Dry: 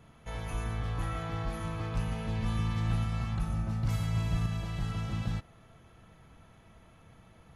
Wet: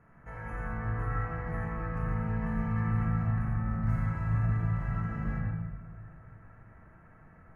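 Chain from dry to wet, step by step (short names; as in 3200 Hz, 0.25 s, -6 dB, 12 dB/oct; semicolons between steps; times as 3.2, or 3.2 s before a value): resonant high shelf 2500 Hz -13.5 dB, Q 3; notch 3500 Hz, Q 5.2; reverb RT60 1.3 s, pre-delay 63 ms, DRR -2 dB; gain -5.5 dB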